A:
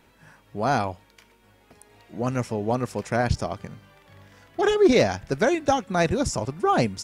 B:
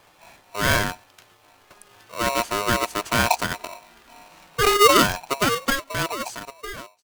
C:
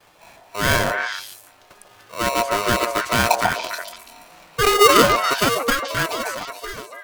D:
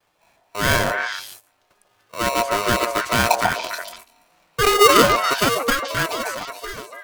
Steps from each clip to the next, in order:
fade out at the end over 2.17 s; polarity switched at an audio rate 820 Hz; trim +2.5 dB
gate with hold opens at -48 dBFS; on a send: repeats whose band climbs or falls 143 ms, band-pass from 620 Hz, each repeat 1.4 oct, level 0 dB; on the sum: trim +1.5 dB
gate -40 dBFS, range -13 dB

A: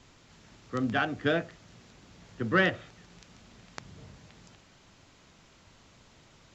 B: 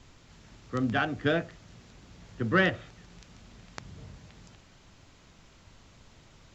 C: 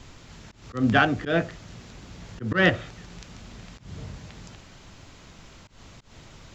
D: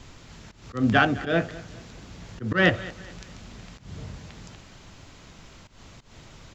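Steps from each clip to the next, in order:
bass shelf 86 Hz +9.5 dB
slow attack 151 ms; trim +8.5 dB
feedback delay 208 ms, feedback 39%, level -19 dB

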